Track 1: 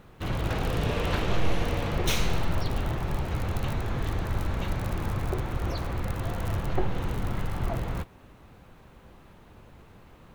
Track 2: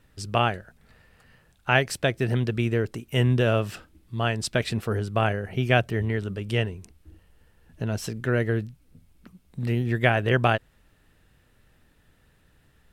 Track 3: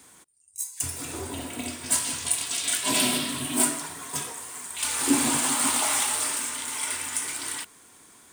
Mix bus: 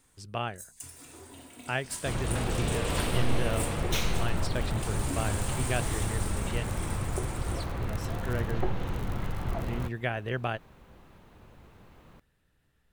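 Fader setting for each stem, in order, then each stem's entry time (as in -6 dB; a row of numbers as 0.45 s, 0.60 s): -2.5 dB, -10.5 dB, -14.5 dB; 1.85 s, 0.00 s, 0.00 s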